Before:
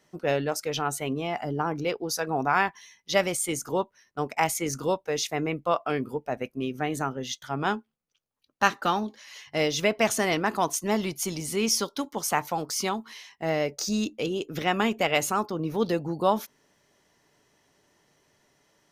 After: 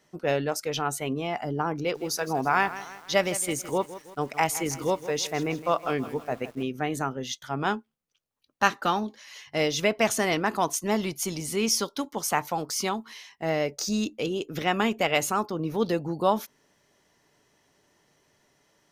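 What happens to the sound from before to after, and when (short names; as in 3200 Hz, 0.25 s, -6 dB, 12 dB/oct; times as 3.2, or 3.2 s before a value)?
1.78–6.63 lo-fi delay 0.162 s, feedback 55%, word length 7-bit, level -14 dB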